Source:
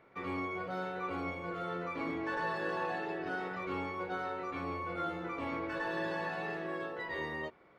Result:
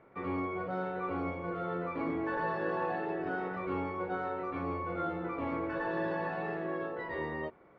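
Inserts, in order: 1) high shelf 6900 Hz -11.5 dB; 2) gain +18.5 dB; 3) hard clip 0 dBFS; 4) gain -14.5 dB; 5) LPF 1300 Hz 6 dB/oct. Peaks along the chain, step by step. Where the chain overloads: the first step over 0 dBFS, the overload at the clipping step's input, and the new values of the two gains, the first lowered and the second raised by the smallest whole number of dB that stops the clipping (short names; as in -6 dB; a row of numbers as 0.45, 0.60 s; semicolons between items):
-23.5, -5.0, -5.0, -19.5, -21.5 dBFS; no overload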